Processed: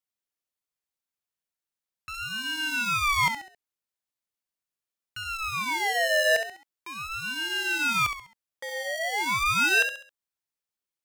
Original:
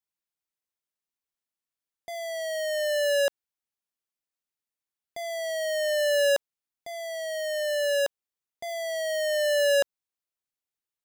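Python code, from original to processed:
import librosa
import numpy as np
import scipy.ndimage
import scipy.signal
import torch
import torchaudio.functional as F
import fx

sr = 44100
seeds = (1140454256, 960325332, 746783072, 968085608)

y = fx.echo_feedback(x, sr, ms=67, feedback_pct=37, wet_db=-8.5)
y = fx.ring_lfo(y, sr, carrier_hz=1700.0, swing_pct=30, hz=0.4)
y = y * librosa.db_to_amplitude(2.0)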